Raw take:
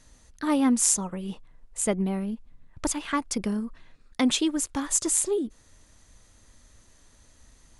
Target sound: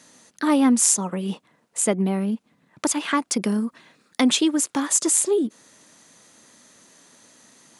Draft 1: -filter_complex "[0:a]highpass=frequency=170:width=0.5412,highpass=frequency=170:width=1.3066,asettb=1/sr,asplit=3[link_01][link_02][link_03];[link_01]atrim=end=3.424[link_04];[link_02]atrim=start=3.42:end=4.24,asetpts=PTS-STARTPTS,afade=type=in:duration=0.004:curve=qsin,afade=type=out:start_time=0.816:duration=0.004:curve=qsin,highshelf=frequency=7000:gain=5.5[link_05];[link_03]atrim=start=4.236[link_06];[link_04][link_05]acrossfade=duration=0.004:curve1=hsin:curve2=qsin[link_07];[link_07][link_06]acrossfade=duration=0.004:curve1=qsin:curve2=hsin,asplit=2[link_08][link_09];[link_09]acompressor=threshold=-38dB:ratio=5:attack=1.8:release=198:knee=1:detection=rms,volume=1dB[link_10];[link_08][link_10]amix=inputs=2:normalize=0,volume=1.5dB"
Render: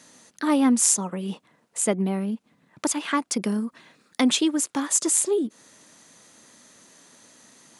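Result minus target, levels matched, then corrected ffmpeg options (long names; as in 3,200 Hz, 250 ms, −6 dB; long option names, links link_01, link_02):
downward compressor: peak gain reduction +9 dB
-filter_complex "[0:a]highpass=frequency=170:width=0.5412,highpass=frequency=170:width=1.3066,asettb=1/sr,asplit=3[link_01][link_02][link_03];[link_01]atrim=end=3.424[link_04];[link_02]atrim=start=3.42:end=4.24,asetpts=PTS-STARTPTS,afade=type=in:duration=0.004:curve=qsin,afade=type=out:start_time=0.816:duration=0.004:curve=qsin,highshelf=frequency=7000:gain=5.5[link_05];[link_03]atrim=start=4.236[link_06];[link_04][link_05]acrossfade=duration=0.004:curve1=hsin:curve2=qsin[link_07];[link_07][link_06]acrossfade=duration=0.004:curve1=qsin:curve2=hsin,asplit=2[link_08][link_09];[link_09]acompressor=threshold=-27dB:ratio=5:attack=1.8:release=198:knee=1:detection=rms,volume=1dB[link_10];[link_08][link_10]amix=inputs=2:normalize=0,volume=1.5dB"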